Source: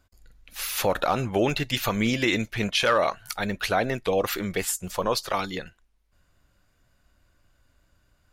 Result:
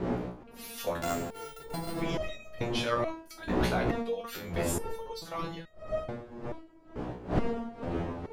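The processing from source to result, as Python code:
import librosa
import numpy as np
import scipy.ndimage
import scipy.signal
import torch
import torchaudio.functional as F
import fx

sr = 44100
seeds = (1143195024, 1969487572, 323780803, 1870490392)

y = fx.sample_sort(x, sr, block=64, at=(1.0, 1.99), fade=0.02)
y = fx.dmg_wind(y, sr, seeds[0], corner_hz=440.0, level_db=-23.0)
y = fx.resonator_held(y, sr, hz=2.3, low_hz=61.0, high_hz=630.0)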